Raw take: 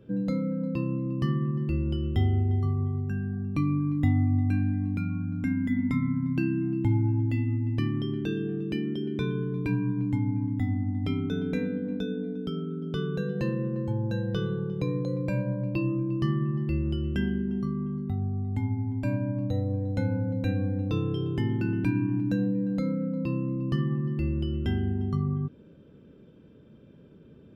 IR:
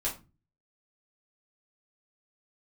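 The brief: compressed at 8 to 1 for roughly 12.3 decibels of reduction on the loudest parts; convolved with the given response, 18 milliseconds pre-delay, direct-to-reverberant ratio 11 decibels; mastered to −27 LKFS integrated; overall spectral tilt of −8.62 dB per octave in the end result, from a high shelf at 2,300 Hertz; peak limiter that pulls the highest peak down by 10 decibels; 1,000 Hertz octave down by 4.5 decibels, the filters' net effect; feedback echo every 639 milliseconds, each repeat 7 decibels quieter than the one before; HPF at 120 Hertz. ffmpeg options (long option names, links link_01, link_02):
-filter_complex "[0:a]highpass=120,equalizer=frequency=1000:width_type=o:gain=-7.5,highshelf=frequency=2300:gain=8,acompressor=threshold=-36dB:ratio=8,alimiter=level_in=11dB:limit=-24dB:level=0:latency=1,volume=-11dB,aecho=1:1:639|1278|1917|2556|3195:0.447|0.201|0.0905|0.0407|0.0183,asplit=2[link_01][link_02];[1:a]atrim=start_sample=2205,adelay=18[link_03];[link_02][link_03]afir=irnorm=-1:irlink=0,volume=-15.5dB[link_04];[link_01][link_04]amix=inputs=2:normalize=0,volume=14.5dB"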